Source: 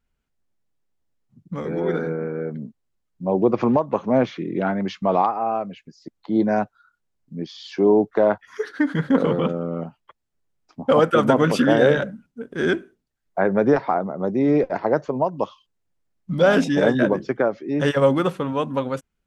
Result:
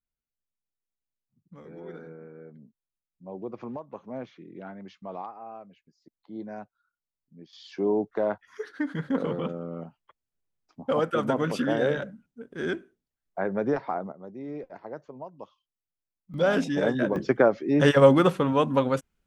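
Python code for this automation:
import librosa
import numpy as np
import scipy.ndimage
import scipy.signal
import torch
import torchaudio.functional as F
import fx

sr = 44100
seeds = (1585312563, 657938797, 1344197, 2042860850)

y = fx.gain(x, sr, db=fx.steps((0.0, -18.5), (7.53, -9.0), (14.12, -19.0), (16.34, -7.0), (17.16, 1.0)))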